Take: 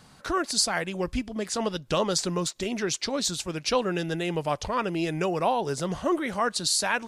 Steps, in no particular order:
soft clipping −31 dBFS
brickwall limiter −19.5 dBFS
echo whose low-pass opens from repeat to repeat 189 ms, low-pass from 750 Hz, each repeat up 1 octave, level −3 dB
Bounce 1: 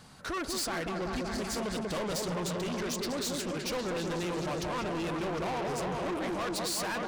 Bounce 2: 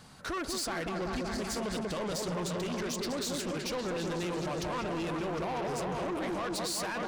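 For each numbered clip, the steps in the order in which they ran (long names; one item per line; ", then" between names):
echo whose low-pass opens from repeat to repeat, then soft clipping, then brickwall limiter
echo whose low-pass opens from repeat to repeat, then brickwall limiter, then soft clipping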